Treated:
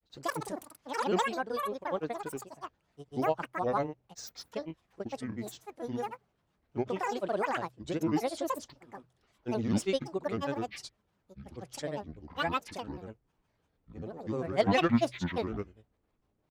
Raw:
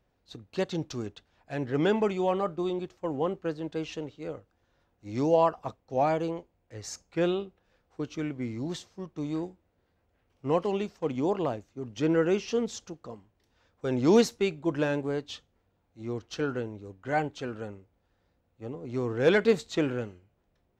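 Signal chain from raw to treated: speed glide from 173% -> 79%; grains 0.1 s, grains 20/s, pitch spread up and down by 12 st; de-hum 62.8 Hz, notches 2; gain -2.5 dB

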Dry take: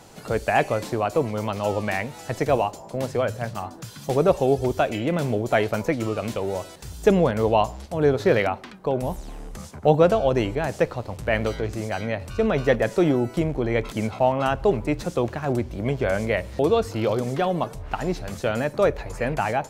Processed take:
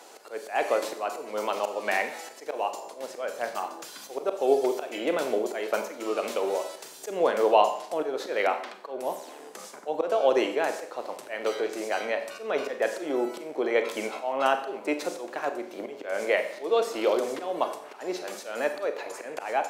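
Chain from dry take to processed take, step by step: auto swell 0.222 s; HPF 340 Hz 24 dB/oct; Schroeder reverb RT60 0.64 s, combs from 30 ms, DRR 7.5 dB

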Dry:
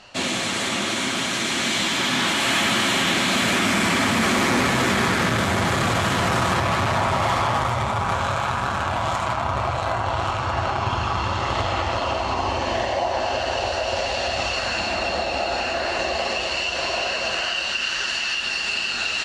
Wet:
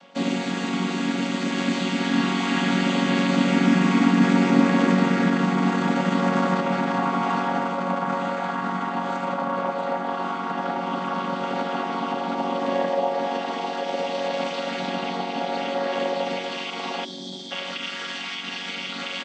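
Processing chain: chord vocoder major triad, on F#3; spectral delete 17.05–17.51, 420–3100 Hz; echo 1.125 s -21 dB

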